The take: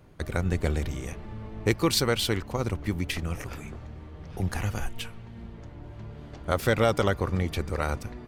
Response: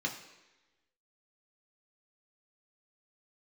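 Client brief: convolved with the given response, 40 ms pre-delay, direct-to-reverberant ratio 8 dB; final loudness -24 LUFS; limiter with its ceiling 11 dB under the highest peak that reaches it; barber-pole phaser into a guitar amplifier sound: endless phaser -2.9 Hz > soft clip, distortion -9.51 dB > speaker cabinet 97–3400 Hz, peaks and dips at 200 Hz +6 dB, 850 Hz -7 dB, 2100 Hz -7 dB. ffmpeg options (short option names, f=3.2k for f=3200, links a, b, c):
-filter_complex "[0:a]alimiter=limit=-21dB:level=0:latency=1,asplit=2[a][b];[1:a]atrim=start_sample=2205,adelay=40[c];[b][c]afir=irnorm=-1:irlink=0,volume=-12dB[d];[a][d]amix=inputs=2:normalize=0,asplit=2[e][f];[f]afreqshift=-2.9[g];[e][g]amix=inputs=2:normalize=1,asoftclip=threshold=-34dB,highpass=97,equalizer=f=200:t=q:w=4:g=6,equalizer=f=850:t=q:w=4:g=-7,equalizer=f=2.1k:t=q:w=4:g=-7,lowpass=f=3.4k:w=0.5412,lowpass=f=3.4k:w=1.3066,volume=17.5dB"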